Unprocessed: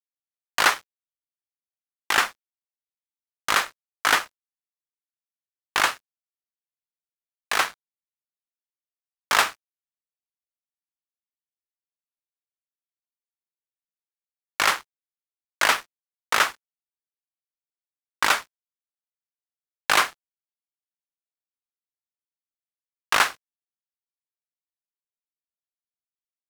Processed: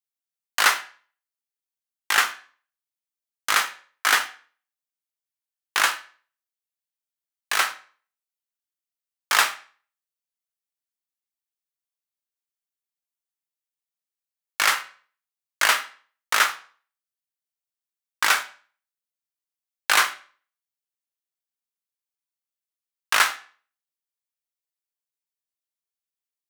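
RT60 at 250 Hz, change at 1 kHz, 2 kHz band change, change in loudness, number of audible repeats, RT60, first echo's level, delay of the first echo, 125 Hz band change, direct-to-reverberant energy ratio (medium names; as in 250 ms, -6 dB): 0.40 s, -0.5 dB, +1.5 dB, +1.0 dB, no echo, 0.45 s, no echo, no echo, no reading, 7.0 dB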